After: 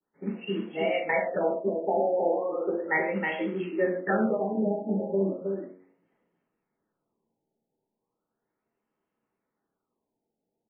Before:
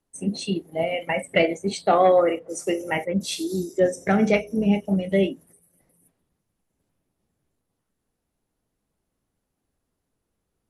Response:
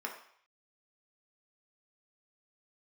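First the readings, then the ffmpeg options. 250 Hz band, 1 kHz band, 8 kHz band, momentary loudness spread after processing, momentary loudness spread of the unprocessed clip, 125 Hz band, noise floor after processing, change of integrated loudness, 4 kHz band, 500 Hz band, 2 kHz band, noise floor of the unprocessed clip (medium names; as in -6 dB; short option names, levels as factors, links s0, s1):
-6.0 dB, -6.0 dB, under -40 dB, 7 LU, 10 LU, -8.5 dB, -85 dBFS, -5.5 dB, under -10 dB, -4.5 dB, -2.0 dB, -79 dBFS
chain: -filter_complex "[0:a]bandreject=f=92.2:t=h:w=4,bandreject=f=184.4:t=h:w=4,bandreject=f=276.6:t=h:w=4,bandreject=f=368.8:t=h:w=4,bandreject=f=461:t=h:w=4,bandreject=f=553.2:t=h:w=4,bandreject=f=645.4:t=h:w=4,bandreject=f=737.6:t=h:w=4,bandreject=f=829.8:t=h:w=4,bandreject=f=922:t=h:w=4,acrusher=bits=5:mode=log:mix=0:aa=0.000001,acompressor=threshold=0.112:ratio=6,aecho=1:1:317:0.596[s0];[1:a]atrim=start_sample=2205,afade=t=out:st=0.21:d=0.01,atrim=end_sample=9702[s1];[s0][s1]afir=irnorm=-1:irlink=0,adynamicequalizer=threshold=0.01:dfrequency=1900:dqfactor=0.96:tfrequency=1900:tqfactor=0.96:attack=5:release=100:ratio=0.375:range=1.5:mode=boostabove:tftype=bell,afftfilt=real='re*lt(b*sr/1024,890*pow(3400/890,0.5+0.5*sin(2*PI*0.36*pts/sr)))':imag='im*lt(b*sr/1024,890*pow(3400/890,0.5+0.5*sin(2*PI*0.36*pts/sr)))':win_size=1024:overlap=0.75,volume=0.668"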